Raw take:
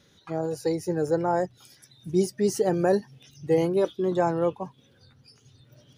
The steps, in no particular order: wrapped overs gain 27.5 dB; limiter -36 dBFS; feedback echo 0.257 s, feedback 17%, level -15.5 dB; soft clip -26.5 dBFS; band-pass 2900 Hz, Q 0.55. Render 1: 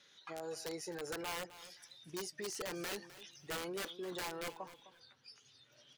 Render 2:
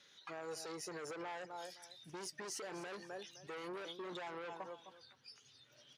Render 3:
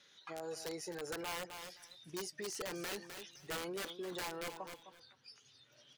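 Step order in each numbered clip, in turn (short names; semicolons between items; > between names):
band-pass > wrapped overs > soft clip > limiter > feedback echo; feedback echo > soft clip > band-pass > limiter > wrapped overs; band-pass > wrapped overs > feedback echo > soft clip > limiter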